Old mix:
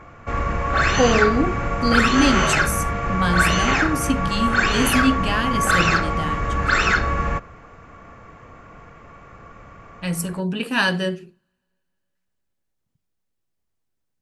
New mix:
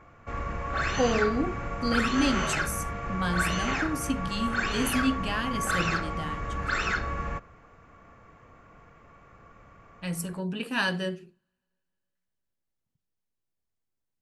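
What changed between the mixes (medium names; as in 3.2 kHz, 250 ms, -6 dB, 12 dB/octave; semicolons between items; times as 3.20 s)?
speech -7.5 dB; background -10.0 dB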